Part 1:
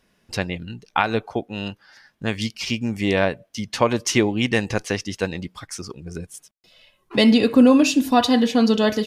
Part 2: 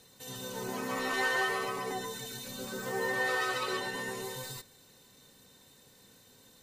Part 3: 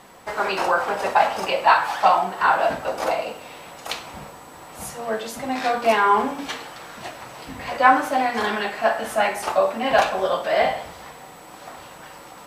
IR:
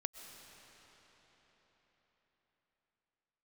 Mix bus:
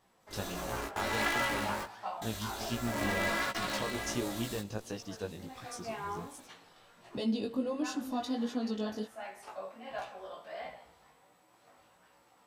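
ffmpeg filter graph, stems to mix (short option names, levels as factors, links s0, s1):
-filter_complex "[0:a]equalizer=f=2100:w=2.3:g=-13.5,volume=0.316,asplit=3[s0][s1][s2];[s1]volume=0.178[s3];[1:a]aeval=exprs='val(0)*sgn(sin(2*PI*170*n/s))':c=same,volume=1.19[s4];[2:a]flanger=delay=8.6:depth=9.1:regen=73:speed=0.43:shape=sinusoidal,volume=0.168[s5];[s2]apad=whole_len=291942[s6];[s4][s6]sidechaingate=range=0.0355:threshold=0.00178:ratio=16:detection=peak[s7];[s0][s5]amix=inputs=2:normalize=0,alimiter=level_in=1.06:limit=0.0631:level=0:latency=1:release=422,volume=0.944,volume=1[s8];[3:a]atrim=start_sample=2205[s9];[s3][s9]afir=irnorm=-1:irlink=0[s10];[s7][s8][s10]amix=inputs=3:normalize=0,flanger=delay=16:depth=3.8:speed=1.4"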